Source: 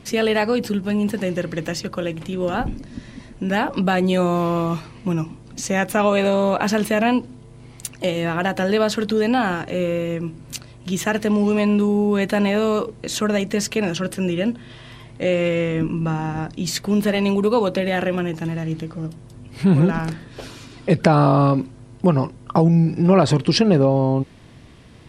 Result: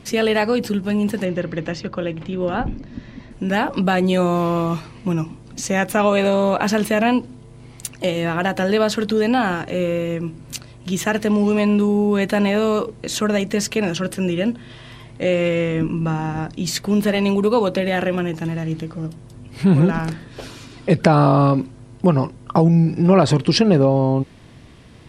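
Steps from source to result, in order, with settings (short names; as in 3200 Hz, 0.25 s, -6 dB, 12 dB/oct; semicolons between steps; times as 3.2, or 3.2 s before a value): 1.25–3.31 air absorption 140 m; gain +1 dB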